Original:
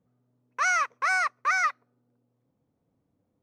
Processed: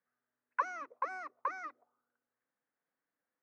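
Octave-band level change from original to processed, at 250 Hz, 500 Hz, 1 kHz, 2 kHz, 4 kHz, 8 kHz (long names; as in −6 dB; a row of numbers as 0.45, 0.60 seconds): can't be measured, −5.5 dB, −10.5 dB, −18.5 dB, below −25 dB, below −25 dB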